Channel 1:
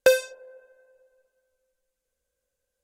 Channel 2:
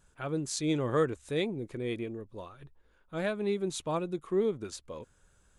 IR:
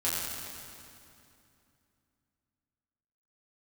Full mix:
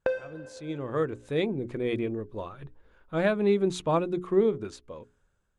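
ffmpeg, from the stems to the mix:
-filter_complex "[0:a]lowpass=1700,acompressor=threshold=0.0501:ratio=3,volume=0.75,asplit=2[s0][s1];[s1]volume=0.119[s2];[1:a]lowpass=f=2500:p=1,bandreject=f=60:t=h:w=6,bandreject=f=120:t=h:w=6,bandreject=f=180:t=h:w=6,bandreject=f=240:t=h:w=6,bandreject=f=300:t=h:w=6,bandreject=f=360:t=h:w=6,bandreject=f=420:t=h:w=6,dynaudnorm=f=230:g=11:m=5.01,volume=0.282[s3];[2:a]atrim=start_sample=2205[s4];[s2][s4]afir=irnorm=-1:irlink=0[s5];[s0][s3][s5]amix=inputs=3:normalize=0,dynaudnorm=f=260:g=5:m=1.78"

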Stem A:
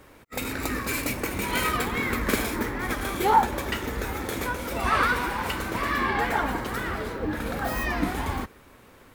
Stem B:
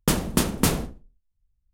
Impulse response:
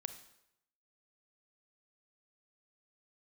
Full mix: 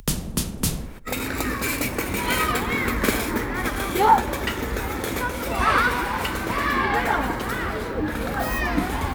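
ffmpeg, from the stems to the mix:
-filter_complex "[0:a]adelay=750,volume=1.19,asplit=2[s0][s1];[s1]volume=0.316[s2];[1:a]acrossover=split=200|3000[s3][s4][s5];[s4]acompressor=threshold=0.0158:ratio=3[s6];[s3][s6][s5]amix=inputs=3:normalize=0,volume=1[s7];[2:a]atrim=start_sample=2205[s8];[s2][s8]afir=irnorm=-1:irlink=0[s9];[s0][s7][s9]amix=inputs=3:normalize=0,acompressor=mode=upward:threshold=0.0562:ratio=2.5"

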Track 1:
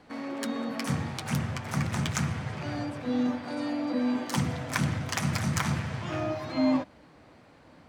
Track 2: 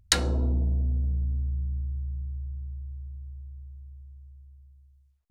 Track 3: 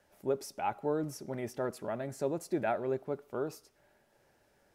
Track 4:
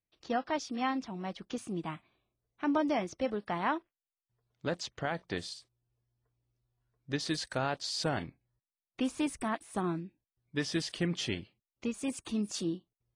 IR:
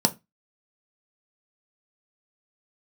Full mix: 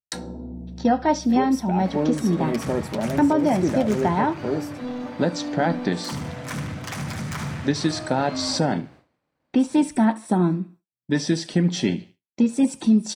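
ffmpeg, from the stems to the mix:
-filter_complex "[0:a]asoftclip=type=tanh:threshold=0.0501,adelay=1750,volume=1.12,asplit=2[s0][s1];[s1]volume=0.422[s2];[1:a]volume=0.126,asplit=2[s3][s4];[s4]volume=0.562[s5];[2:a]acrossover=split=500|3000[s6][s7][s8];[s7]acompressor=threshold=0.01:ratio=6[s9];[s6][s9][s8]amix=inputs=3:normalize=0,adelay=1100,volume=1,asplit=2[s10][s11];[s11]volume=0.447[s12];[3:a]adelay=550,volume=1.26,asplit=3[s13][s14][s15];[s14]volume=0.473[s16];[s15]volume=0.237[s17];[4:a]atrim=start_sample=2205[s18];[s5][s12][s16]amix=inputs=3:normalize=0[s19];[s19][s18]afir=irnorm=-1:irlink=0[s20];[s2][s17]amix=inputs=2:normalize=0,aecho=0:1:75|150|225|300|375:1|0.37|0.137|0.0507|0.0187[s21];[s0][s3][s10][s13][s20][s21]amix=inputs=6:normalize=0,agate=range=0.0224:threshold=0.0112:ratio=3:detection=peak,alimiter=limit=0.316:level=0:latency=1:release=383"

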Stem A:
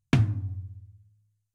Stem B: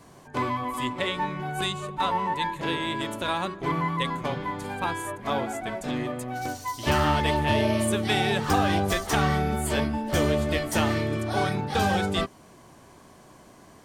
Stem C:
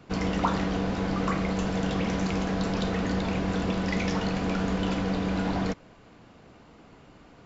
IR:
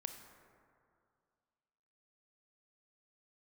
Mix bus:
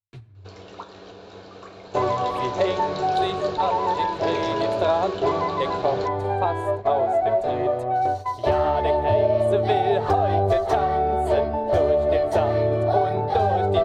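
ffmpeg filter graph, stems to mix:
-filter_complex "[0:a]asplit=2[s0][s1];[s1]adelay=6.8,afreqshift=1.8[s2];[s0][s2]amix=inputs=2:normalize=1,volume=0.119,asplit=2[s3][s4];[s4]volume=0.708[s5];[1:a]lowpass=f=1300:p=1,equalizer=f=690:t=o:w=0.75:g=14,acompressor=threshold=0.0891:ratio=6,adelay=1600,volume=0.596[s6];[2:a]highpass=f=320:p=1,bandreject=f=2000:w=7.3,adelay=350,volume=0.398,asplit=2[s7][s8];[s8]volume=0.237[s9];[s3][s7]amix=inputs=2:normalize=0,alimiter=level_in=2.82:limit=0.0631:level=0:latency=1:release=380,volume=0.355,volume=1[s10];[3:a]atrim=start_sample=2205[s11];[s5][s9]amix=inputs=2:normalize=0[s12];[s12][s11]afir=irnorm=-1:irlink=0[s13];[s6][s10][s13]amix=inputs=3:normalize=0,agate=range=0.355:threshold=0.0126:ratio=16:detection=peak,equalizer=f=100:t=o:w=0.33:g=12,equalizer=f=160:t=o:w=0.33:g=-11,equalizer=f=250:t=o:w=0.33:g=-10,equalizer=f=400:t=o:w=0.33:g=10,equalizer=f=630:t=o:w=0.33:g=4,equalizer=f=4000:t=o:w=0.33:g=9,dynaudnorm=f=100:g=5:m=2"

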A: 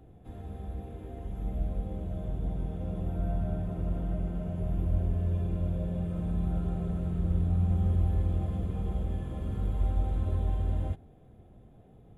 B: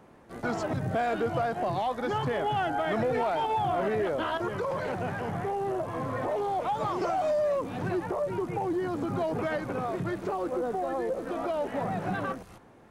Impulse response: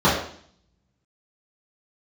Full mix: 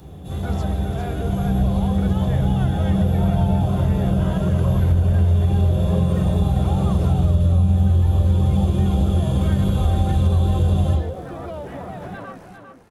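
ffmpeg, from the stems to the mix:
-filter_complex "[0:a]aexciter=amount=5.3:drive=7.8:freq=2800,volume=1.33,asplit=2[s0][s1];[s1]volume=0.251[s2];[1:a]alimiter=level_in=1.33:limit=0.0631:level=0:latency=1,volume=0.75,volume=1,asplit=2[s3][s4];[s4]volume=0.422[s5];[2:a]atrim=start_sample=2205[s6];[s2][s6]afir=irnorm=-1:irlink=0[s7];[s5]aecho=0:1:400:1[s8];[s0][s3][s7][s8]amix=inputs=4:normalize=0,acompressor=threshold=0.224:ratio=6"

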